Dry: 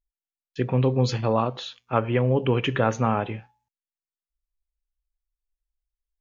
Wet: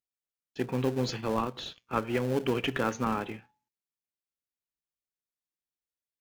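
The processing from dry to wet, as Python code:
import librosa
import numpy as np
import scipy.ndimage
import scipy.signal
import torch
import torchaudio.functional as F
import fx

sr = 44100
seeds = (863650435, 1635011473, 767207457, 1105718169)

p1 = scipy.signal.sosfilt(scipy.signal.butter(2, 220.0, 'highpass', fs=sr, output='sos'), x)
p2 = fx.peak_eq(p1, sr, hz=640.0, db=-9.5, octaves=0.56)
p3 = fx.sample_hold(p2, sr, seeds[0], rate_hz=1100.0, jitter_pct=20)
p4 = p2 + F.gain(torch.from_numpy(p3), -10.5).numpy()
y = F.gain(torch.from_numpy(p4), -4.0).numpy()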